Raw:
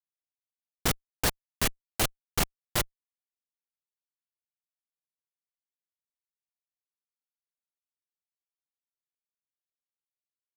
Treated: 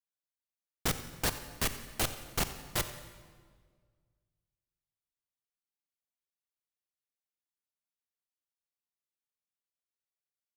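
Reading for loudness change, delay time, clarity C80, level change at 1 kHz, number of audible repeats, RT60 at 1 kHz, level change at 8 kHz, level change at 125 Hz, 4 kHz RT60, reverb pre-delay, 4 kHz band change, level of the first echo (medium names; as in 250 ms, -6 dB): -4.0 dB, 90 ms, 11.0 dB, -4.0 dB, 2, 1.6 s, -4.0 dB, -3.5 dB, 1.3 s, 23 ms, -4.0 dB, -17.0 dB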